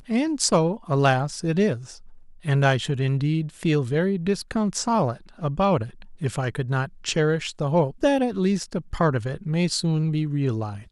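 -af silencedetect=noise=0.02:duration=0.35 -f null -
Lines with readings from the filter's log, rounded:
silence_start: 1.95
silence_end: 2.45 | silence_duration: 0.49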